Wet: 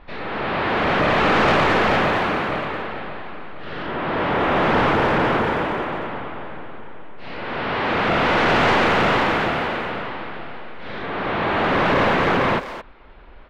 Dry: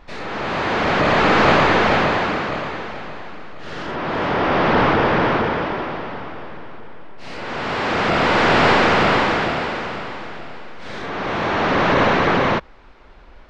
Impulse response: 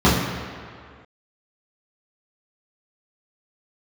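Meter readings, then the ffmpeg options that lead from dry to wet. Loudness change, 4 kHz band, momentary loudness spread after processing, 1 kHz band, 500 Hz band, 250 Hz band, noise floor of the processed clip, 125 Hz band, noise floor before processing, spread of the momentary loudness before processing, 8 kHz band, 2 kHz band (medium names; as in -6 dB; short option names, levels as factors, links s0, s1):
-1.5 dB, -2.0 dB, 18 LU, -1.5 dB, -1.5 dB, -1.5 dB, -41 dBFS, -1.5 dB, -43 dBFS, 20 LU, no reading, -1.5 dB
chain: -filter_complex "[0:a]lowpass=f=3800:w=0.5412,lowpass=f=3800:w=1.3066,asoftclip=type=tanh:threshold=0.266,asplit=2[s0][s1];[s1]adelay=220,highpass=300,lowpass=3400,asoftclip=type=hard:threshold=0.0944,volume=0.355[s2];[s0][s2]amix=inputs=2:normalize=0"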